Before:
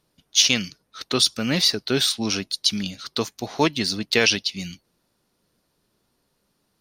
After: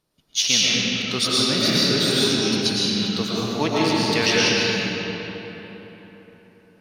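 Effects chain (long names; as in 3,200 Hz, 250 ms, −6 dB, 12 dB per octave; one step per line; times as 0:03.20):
comb and all-pass reverb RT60 4 s, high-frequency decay 0.6×, pre-delay 75 ms, DRR −8 dB
level −5 dB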